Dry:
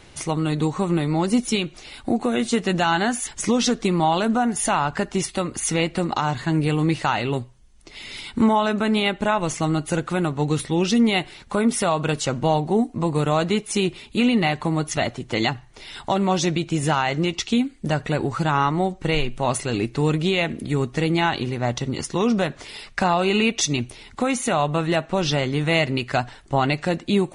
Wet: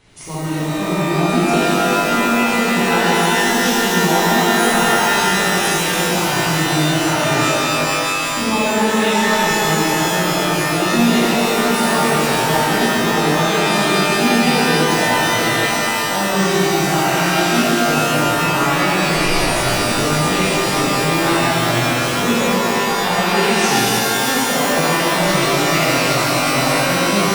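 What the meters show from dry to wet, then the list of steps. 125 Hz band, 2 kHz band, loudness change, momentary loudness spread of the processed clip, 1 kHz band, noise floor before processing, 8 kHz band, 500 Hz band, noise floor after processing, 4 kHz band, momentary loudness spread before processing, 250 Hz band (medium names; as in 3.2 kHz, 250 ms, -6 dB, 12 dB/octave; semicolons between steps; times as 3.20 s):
+2.5 dB, +11.0 dB, +7.0 dB, 3 LU, +8.0 dB, -47 dBFS, +9.5 dB, +6.0 dB, -19 dBFS, +10.0 dB, 6 LU, +4.0 dB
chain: pitch-shifted reverb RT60 4 s, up +12 st, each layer -2 dB, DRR -10.5 dB; trim -8.5 dB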